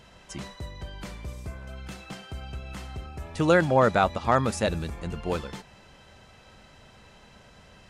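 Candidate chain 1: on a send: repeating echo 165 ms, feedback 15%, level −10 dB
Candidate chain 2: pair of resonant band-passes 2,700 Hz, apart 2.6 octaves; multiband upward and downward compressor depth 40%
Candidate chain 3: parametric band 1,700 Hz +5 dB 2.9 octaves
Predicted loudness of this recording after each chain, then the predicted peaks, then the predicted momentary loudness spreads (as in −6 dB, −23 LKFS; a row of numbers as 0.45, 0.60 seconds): −26.0, −45.0, −22.0 LKFS; −8.5, −23.5, −4.0 dBFS; 19, 21, 20 LU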